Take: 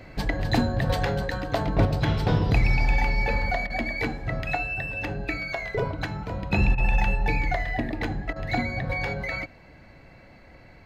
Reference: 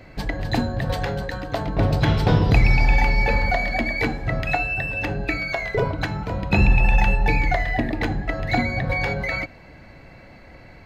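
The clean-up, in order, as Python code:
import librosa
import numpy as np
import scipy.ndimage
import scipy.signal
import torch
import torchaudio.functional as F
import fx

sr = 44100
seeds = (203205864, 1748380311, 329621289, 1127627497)

y = fx.fix_declip(x, sr, threshold_db=-12.5)
y = fx.fix_interpolate(y, sr, at_s=(3.67, 6.75, 8.33), length_ms=29.0)
y = fx.fix_level(y, sr, at_s=1.85, step_db=5.0)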